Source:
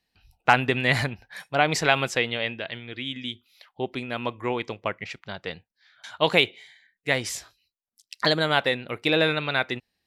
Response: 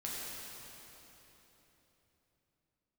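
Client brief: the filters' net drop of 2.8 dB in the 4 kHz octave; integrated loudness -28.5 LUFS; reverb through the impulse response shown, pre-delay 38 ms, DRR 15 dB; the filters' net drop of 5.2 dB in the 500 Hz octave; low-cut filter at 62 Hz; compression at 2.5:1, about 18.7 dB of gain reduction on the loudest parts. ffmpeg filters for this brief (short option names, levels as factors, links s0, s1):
-filter_complex "[0:a]highpass=62,equalizer=f=500:t=o:g=-6.5,equalizer=f=4000:t=o:g=-3.5,acompressor=threshold=0.00631:ratio=2.5,asplit=2[s0][s1];[1:a]atrim=start_sample=2205,adelay=38[s2];[s1][s2]afir=irnorm=-1:irlink=0,volume=0.141[s3];[s0][s3]amix=inputs=2:normalize=0,volume=4.73"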